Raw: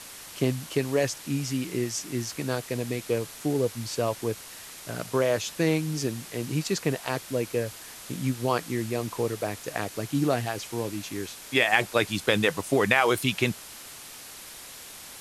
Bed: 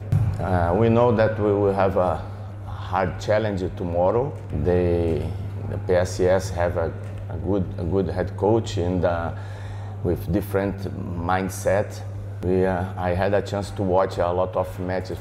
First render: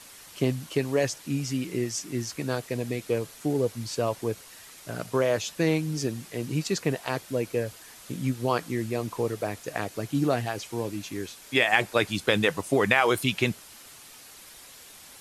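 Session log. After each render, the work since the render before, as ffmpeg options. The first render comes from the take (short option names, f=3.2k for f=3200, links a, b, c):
-af "afftdn=nr=6:nf=-44"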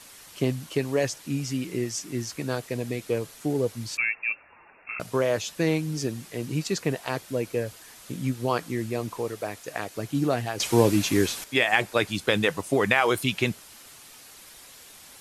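-filter_complex "[0:a]asettb=1/sr,asplit=3[a][b][c];[a]atrim=end=3.974[d];[b]atrim=start=3.97:end=5,asetpts=PTS-STARTPTS,afade=t=in:d=0.004:c=qsin,afade=t=out:st=1.026:d=0.004:c=qsin,lowpass=f=2.4k:t=q:w=0.5098,lowpass=f=2.4k:t=q:w=0.6013,lowpass=f=2.4k:t=q:w=0.9,lowpass=f=2.4k:t=q:w=2.563,afreqshift=-2800[e];[c]atrim=start=4.996[f];[d][e]acrossfade=d=0.004:c1=hsin:c2=qsin[g];[g][f]acrossfade=d=0.004:c1=qsin:c2=hsin,asettb=1/sr,asplit=3[h][i][j];[h]atrim=end=9.184[k];[i]atrim=start=9.18:end=9.96,asetpts=PTS-STARTPTS,afade=t=in:d=0.004:c=qsin,afade=t=out:st=0.776:d=0.004:c=qsin,lowshelf=f=330:g=-6.5[l];[j]atrim=start=9.956[m];[k][l]acrossfade=d=0.004:c1=hsin:c2=qsin[n];[n][m]acrossfade=d=0.004:c1=qsin:c2=hsin,asplit=3[o][p][q];[o]atrim=end=10.602[r];[p]atrim=start=10.598:end=11.442,asetpts=PTS-STARTPTS,volume=12dB[s];[q]atrim=start=11.438[t];[r][s]acrossfade=d=0.004:c1=hsin:c2=hsin[u];[u][t]acrossfade=d=0.004:c1=hsin:c2=hsin"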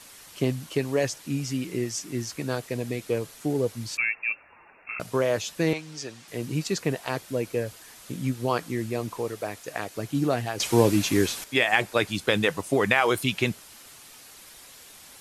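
-filter_complex "[0:a]asettb=1/sr,asplit=3[a][b][c];[a]atrim=end=5.734[d];[b]atrim=start=5.73:end=6.28,asetpts=PTS-STARTPTS,afade=t=in:d=0.004:c=qsin,afade=t=out:st=0.546:d=0.004:c=qsin,acrossover=split=550 7900:gain=0.2 1 0.112[e][f][g];[e][f][g]amix=inputs=3:normalize=0[h];[c]atrim=start=6.276[i];[d][h]acrossfade=d=0.004:c1=hsin:c2=qsin[j];[j][i]acrossfade=d=0.004:c1=qsin:c2=hsin"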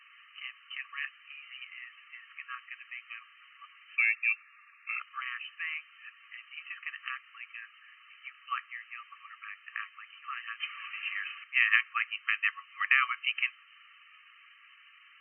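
-af "afftfilt=real='re*between(b*sr/4096,1100,3100)':imag='im*between(b*sr/4096,1100,3100)':win_size=4096:overlap=0.75,bandreject=f=1.5k:w=5.4"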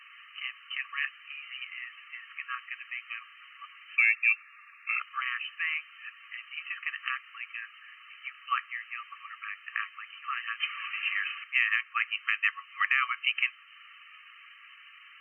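-af "alimiter=limit=-17.5dB:level=0:latency=1:release=453,acontrast=29"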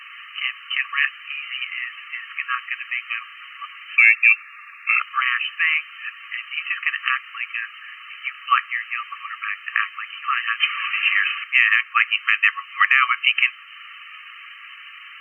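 -af "volume=12dB,alimiter=limit=-3dB:level=0:latency=1"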